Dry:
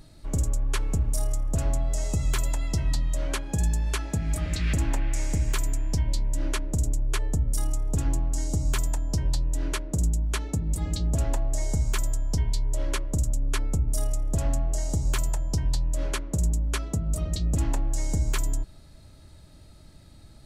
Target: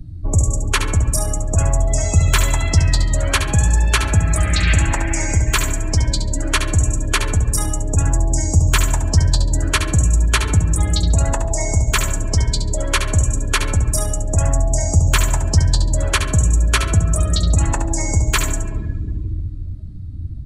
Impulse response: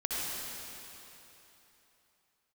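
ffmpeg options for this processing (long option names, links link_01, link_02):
-filter_complex "[0:a]asplit=2[link_01][link_02];[1:a]atrim=start_sample=2205,lowpass=4300[link_03];[link_02][link_03]afir=irnorm=-1:irlink=0,volume=-11.5dB[link_04];[link_01][link_04]amix=inputs=2:normalize=0,afftdn=noise_reduction=26:noise_floor=-42,apsyclip=15.5dB,acrossover=split=130|870[link_05][link_06][link_07];[link_05]acompressor=threshold=-18dB:ratio=4[link_08];[link_06]acompressor=threshold=-28dB:ratio=4[link_09];[link_08][link_09][link_07]amix=inputs=3:normalize=0,equalizer=frequency=89:width_type=o:width=0.41:gain=11.5,aecho=1:1:70|140|210:0.376|0.094|0.0235,volume=-1dB"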